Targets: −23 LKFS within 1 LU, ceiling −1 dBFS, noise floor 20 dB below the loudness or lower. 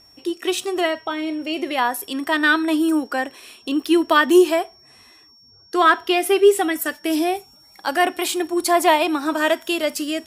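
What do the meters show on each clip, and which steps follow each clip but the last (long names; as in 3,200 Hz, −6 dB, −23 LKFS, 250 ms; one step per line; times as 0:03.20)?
interfering tone 5,500 Hz; level of the tone −49 dBFS; integrated loudness −19.5 LKFS; sample peak −2.5 dBFS; target loudness −23.0 LKFS
→ notch filter 5,500 Hz, Q 30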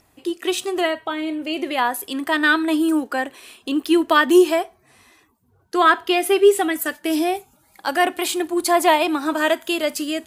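interfering tone none found; integrated loudness −19.5 LKFS; sample peak −2.5 dBFS; target loudness −23.0 LKFS
→ level −3.5 dB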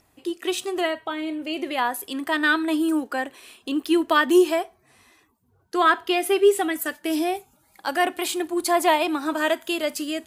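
integrated loudness −23.0 LKFS; sample peak −6.0 dBFS; background noise floor −64 dBFS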